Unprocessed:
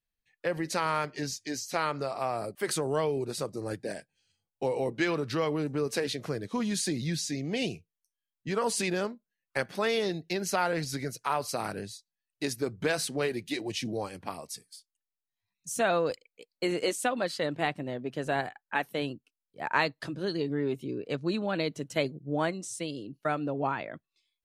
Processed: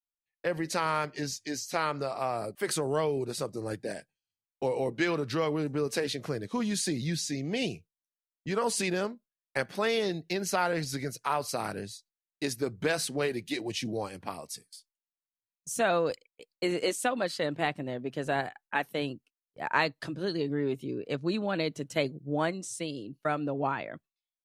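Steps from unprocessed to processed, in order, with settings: gate with hold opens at -44 dBFS

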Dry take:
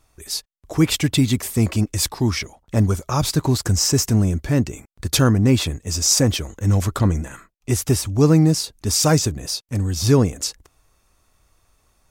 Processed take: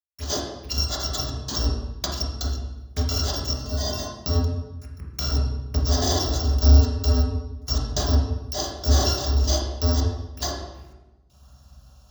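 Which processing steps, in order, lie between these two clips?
FFT order left unsorted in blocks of 256 samples; 3.53–4.16 resonator 210 Hz, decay 0.25 s, harmonics odd, mix 90%; step gate ".xxxxxx.x..x.x." 81 bpm -60 dB; compressor 6:1, threshold -27 dBFS, peak gain reduction 15.5 dB; envelope phaser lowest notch 290 Hz, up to 2300 Hz, full sweep at -38 dBFS; reverb RT60 1.1 s, pre-delay 3 ms, DRR -3.5 dB; gain +4.5 dB

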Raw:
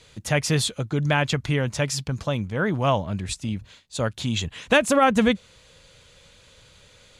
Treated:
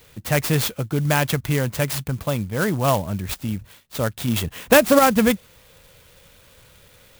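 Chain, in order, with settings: 4.28–4.99 bell 480 Hz +4 dB 2.9 oct; clock jitter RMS 0.048 ms; gain +2 dB

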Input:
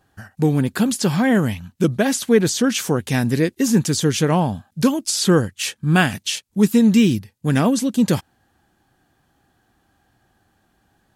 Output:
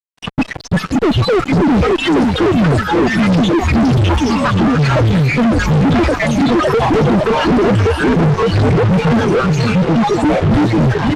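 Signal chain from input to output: random spectral dropouts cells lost 83%; reverb removal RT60 1.1 s; de-esser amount 80%; high shelf 2300 Hz -4.5 dB; compressor 2:1, threshold -28 dBFS, peak gain reduction 9.5 dB; formant-preserving pitch shift +11 st; modulation noise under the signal 22 dB; delay with a stepping band-pass 0.561 s, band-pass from 220 Hz, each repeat 0.7 oct, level -1 dB; echoes that change speed 0.145 s, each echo -7 st, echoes 3; on a send: feedback echo 0.53 s, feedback 38%, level -15 dB; on the sum: fuzz box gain 51 dB, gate -49 dBFS; tape spacing loss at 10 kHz 24 dB; gain +4 dB

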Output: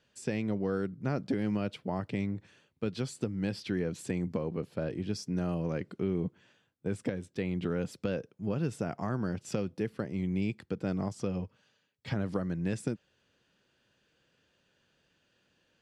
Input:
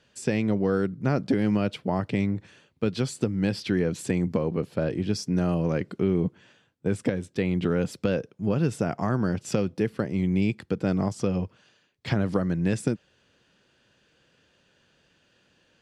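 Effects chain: 11.42–12.14 notch comb 350 Hz; gain -7.5 dB

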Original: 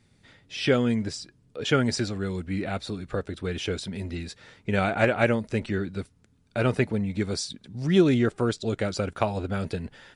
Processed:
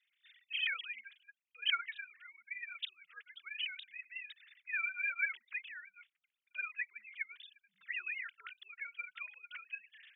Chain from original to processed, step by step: sine-wave speech; inverse Chebyshev high-pass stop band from 810 Hz, stop band 50 dB; tape flanging out of phase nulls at 1 Hz, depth 5.3 ms; gain +4.5 dB

